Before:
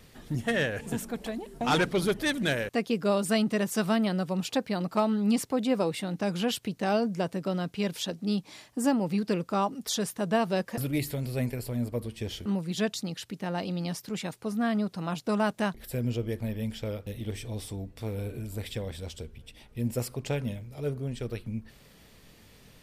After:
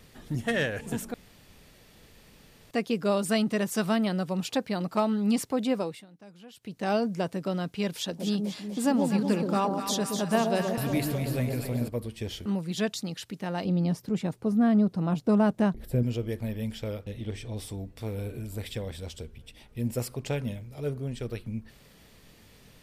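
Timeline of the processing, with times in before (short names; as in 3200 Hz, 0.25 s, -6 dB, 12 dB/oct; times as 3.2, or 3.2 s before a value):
1.14–2.71 room tone
5.69–6.91 dip -21 dB, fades 0.37 s
7.95–11.88 echo with dull and thin repeats by turns 0.123 s, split 850 Hz, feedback 75%, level -4 dB
13.65–16.03 tilt shelf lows +7.5 dB, about 830 Hz
17.04–17.57 air absorption 50 m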